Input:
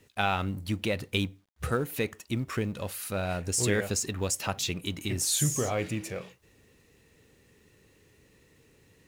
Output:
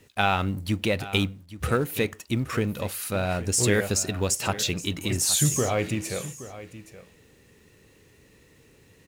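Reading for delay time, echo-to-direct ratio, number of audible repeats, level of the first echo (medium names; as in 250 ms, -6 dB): 822 ms, -15.5 dB, 1, -15.5 dB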